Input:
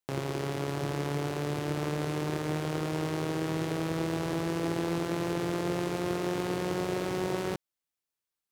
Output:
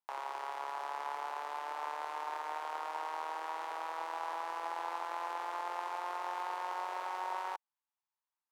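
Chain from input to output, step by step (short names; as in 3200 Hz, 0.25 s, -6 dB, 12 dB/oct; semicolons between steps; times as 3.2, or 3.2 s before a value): ladder high-pass 820 Hz, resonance 65%; high shelf 2900 Hz -10 dB; gain +6.5 dB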